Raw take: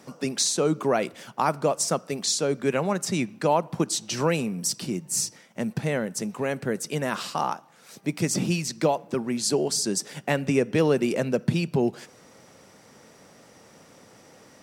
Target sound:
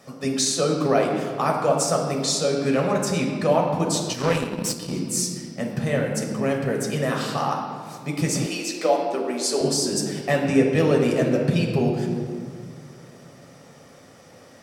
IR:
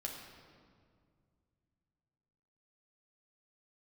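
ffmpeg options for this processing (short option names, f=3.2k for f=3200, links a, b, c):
-filter_complex "[1:a]atrim=start_sample=2205[a];[0:a][a]afir=irnorm=-1:irlink=0,asettb=1/sr,asplit=3[b][c][d];[b]atrim=end=4.134[e];[c]atrim=start=4.13:end=4.93,asetpts=PTS-STARTPTS,afade=t=in:d=0.004:c=qsin,afade=t=out:st=0.796:d=0.004:c=qsin,aeval=exprs='0.237*(cos(1*acos(clip(val(0)/0.237,-1,1)))-cos(1*PI/2))+0.0211*(cos(7*acos(clip(val(0)/0.237,-1,1)))-cos(7*PI/2))':c=same[f];[d]atrim=start=4.926[g];[e][f]acrossfade=d=0.004:c1=hsin:c2=qsin[h];[h][g]acrossfade=d=0.004:c1=qsin:c2=hsin,asettb=1/sr,asplit=3[i][j][k];[i]atrim=end=8.464[l];[j]atrim=start=8.46:end=9.61,asetpts=PTS-STARTPTS,afade=t=in:d=0.004:c=qsin,afade=t=out:st=1.146:d=0.004:c=qsin,highpass=f=290:w=0.5412,highpass=f=290:w=1.3066[m];[k]atrim=start=9.606[n];[l][m]acrossfade=d=0.004:c1=hsin:c2=qsin[o];[o][n]acrossfade=d=0.004:c1=qsin:c2=hsin,volume=3.5dB"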